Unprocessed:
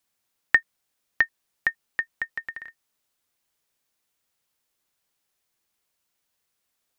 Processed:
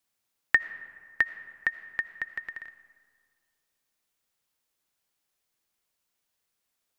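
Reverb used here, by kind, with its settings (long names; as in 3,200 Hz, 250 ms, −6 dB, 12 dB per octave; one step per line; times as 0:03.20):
comb and all-pass reverb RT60 2 s, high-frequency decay 0.5×, pre-delay 40 ms, DRR 13.5 dB
level −3 dB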